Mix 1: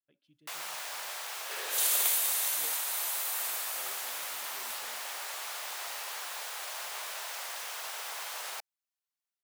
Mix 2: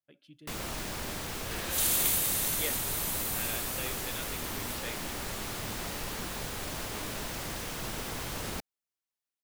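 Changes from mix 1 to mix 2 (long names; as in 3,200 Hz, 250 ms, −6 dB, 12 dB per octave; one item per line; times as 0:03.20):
speech +12.0 dB
first sound: remove high-pass filter 670 Hz 24 dB per octave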